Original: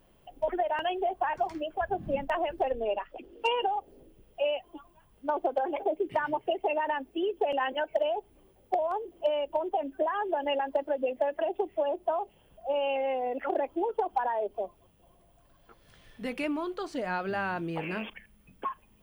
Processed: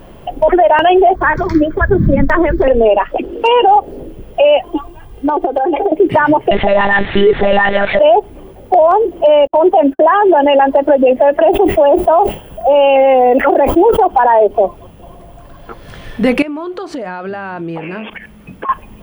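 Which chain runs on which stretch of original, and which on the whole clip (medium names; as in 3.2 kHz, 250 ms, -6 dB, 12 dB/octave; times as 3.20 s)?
1.15–2.68 s: bass shelf 260 Hz +7 dB + static phaser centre 2.8 kHz, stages 6
4.70–5.92 s: peaking EQ 1.2 kHz -4.5 dB 1.3 oct + comb 2.5 ms, depth 59% + compression 16:1, threshold -36 dBFS
6.51–7.99 s: zero-crossing glitches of -25 dBFS + peaking EQ 1.9 kHz +11.5 dB 0.39 oct + monotone LPC vocoder at 8 kHz 200 Hz
9.47–10.57 s: gate -48 dBFS, range -45 dB + bass shelf 64 Hz -10 dB
11.49–14.08 s: treble shelf 9.1 kHz +10.5 dB + decay stretcher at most 140 dB/s
16.42–18.69 s: high-pass 120 Hz 6 dB/octave + treble shelf 10 kHz -4.5 dB + compression 8:1, threshold -47 dBFS
whole clip: treble shelf 2.6 kHz -9.5 dB; loudness maximiser +28 dB; trim -1 dB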